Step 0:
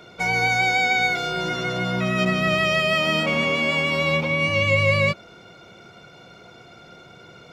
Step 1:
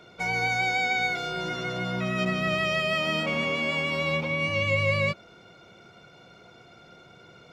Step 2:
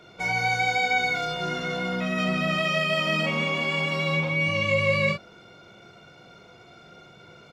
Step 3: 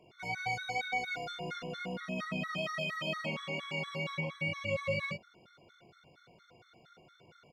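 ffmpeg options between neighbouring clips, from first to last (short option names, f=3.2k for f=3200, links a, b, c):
-af "highshelf=f=10k:g=-4,volume=-5.5dB"
-af "aecho=1:1:20|44:0.376|0.631"
-af "afftfilt=real='re*gt(sin(2*PI*4.3*pts/sr)*(1-2*mod(floor(b*sr/1024/1100),2)),0)':imag='im*gt(sin(2*PI*4.3*pts/sr)*(1-2*mod(floor(b*sr/1024/1100),2)),0)':win_size=1024:overlap=0.75,volume=-8.5dB"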